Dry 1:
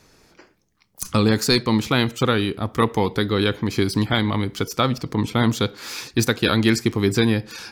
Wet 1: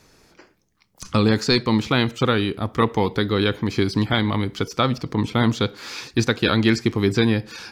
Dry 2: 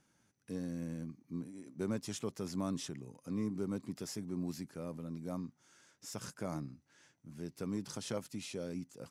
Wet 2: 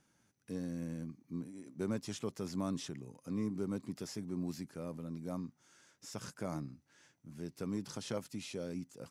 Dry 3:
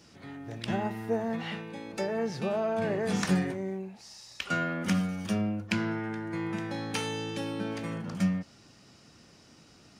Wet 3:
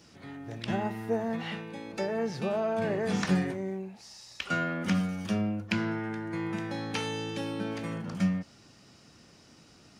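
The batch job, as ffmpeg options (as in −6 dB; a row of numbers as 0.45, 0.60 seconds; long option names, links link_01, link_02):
-filter_complex "[0:a]acrossover=split=6300[link_01][link_02];[link_02]acompressor=threshold=-52dB:ratio=4:attack=1:release=60[link_03];[link_01][link_03]amix=inputs=2:normalize=0"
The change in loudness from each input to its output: 0.0, 0.0, 0.0 LU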